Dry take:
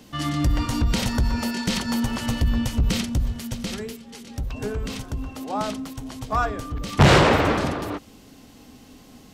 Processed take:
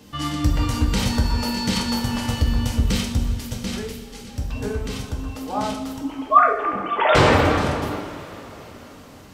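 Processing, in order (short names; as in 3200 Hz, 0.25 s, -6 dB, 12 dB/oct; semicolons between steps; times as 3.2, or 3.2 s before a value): 5.98–7.15 sine-wave speech; two-slope reverb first 0.53 s, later 4.6 s, from -18 dB, DRR -0.5 dB; gain -1.5 dB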